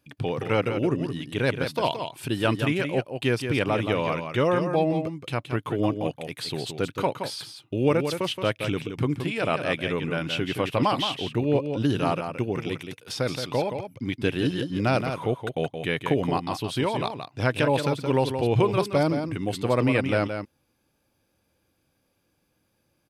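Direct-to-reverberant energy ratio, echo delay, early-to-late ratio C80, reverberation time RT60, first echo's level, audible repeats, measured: no reverb, 172 ms, no reverb, no reverb, -7.5 dB, 1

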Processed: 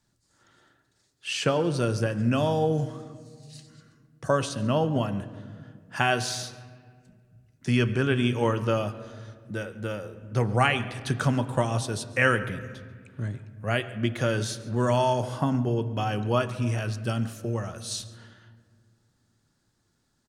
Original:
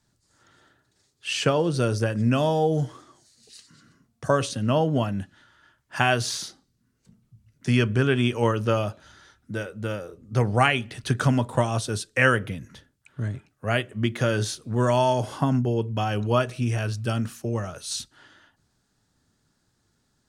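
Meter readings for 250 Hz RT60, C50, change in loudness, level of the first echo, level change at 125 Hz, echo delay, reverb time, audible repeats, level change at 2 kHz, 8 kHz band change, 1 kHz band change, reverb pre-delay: 2.7 s, 13.0 dB, -2.0 dB, -20.5 dB, -2.5 dB, 140 ms, 1.9 s, 1, -2.0 dB, -2.5 dB, -2.0 dB, 3 ms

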